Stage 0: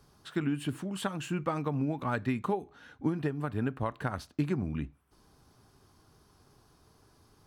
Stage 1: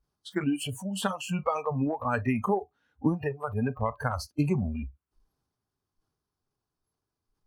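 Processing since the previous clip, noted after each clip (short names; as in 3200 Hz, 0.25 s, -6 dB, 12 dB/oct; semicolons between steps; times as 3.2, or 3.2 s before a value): spectral noise reduction 29 dB; transient shaper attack +1 dB, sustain +6 dB; gain +4 dB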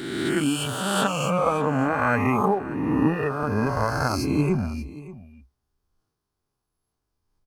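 spectral swells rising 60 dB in 1.76 s; in parallel at -11 dB: crossover distortion -38.5 dBFS; on the sum: echo 0.582 s -17.5 dB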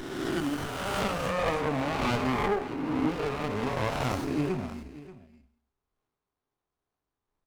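non-linear reverb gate 0.29 s falling, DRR 9 dB; overdrive pedal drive 11 dB, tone 7800 Hz, clips at -8 dBFS; running maximum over 17 samples; gain -6.5 dB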